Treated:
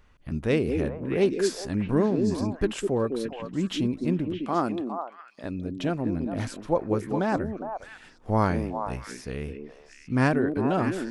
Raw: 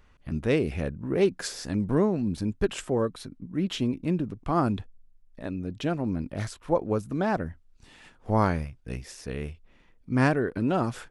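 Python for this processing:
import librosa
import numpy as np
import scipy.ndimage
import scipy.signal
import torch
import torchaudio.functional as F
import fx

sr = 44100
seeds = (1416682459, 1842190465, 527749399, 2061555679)

y = fx.highpass(x, sr, hz=240.0, slope=12, at=(4.45, 5.44))
y = fx.echo_stepped(y, sr, ms=205, hz=310.0, octaves=1.4, feedback_pct=70, wet_db=-1.5)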